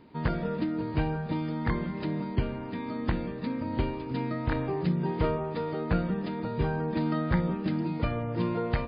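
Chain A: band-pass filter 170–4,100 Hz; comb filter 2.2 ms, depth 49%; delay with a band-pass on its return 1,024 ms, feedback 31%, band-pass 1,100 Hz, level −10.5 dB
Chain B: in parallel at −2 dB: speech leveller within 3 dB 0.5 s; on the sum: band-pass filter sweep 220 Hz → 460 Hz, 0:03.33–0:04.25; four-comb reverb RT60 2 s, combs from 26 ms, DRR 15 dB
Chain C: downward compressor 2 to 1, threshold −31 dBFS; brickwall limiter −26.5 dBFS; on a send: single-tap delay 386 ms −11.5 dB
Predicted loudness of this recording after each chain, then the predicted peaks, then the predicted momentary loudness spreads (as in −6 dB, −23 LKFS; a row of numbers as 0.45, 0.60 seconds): −32.0, −31.5, −35.5 LKFS; −15.5, −16.5, −24.5 dBFS; 5, 4, 2 LU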